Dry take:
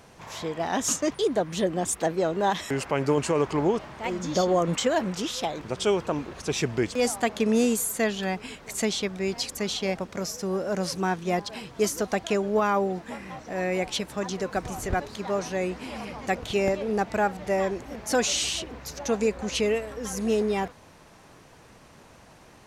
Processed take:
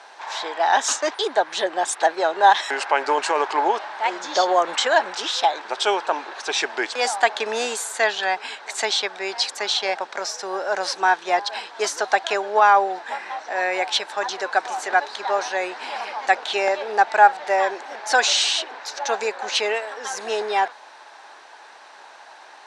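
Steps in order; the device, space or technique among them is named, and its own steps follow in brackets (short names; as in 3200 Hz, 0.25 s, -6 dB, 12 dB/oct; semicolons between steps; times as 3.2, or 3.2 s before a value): phone speaker on a table (speaker cabinet 450–8200 Hz, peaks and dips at 490 Hz -7 dB, 850 Hz +9 dB, 1600 Hz +8 dB, 3900 Hz +6 dB, 6800 Hz -4 dB); gain +6 dB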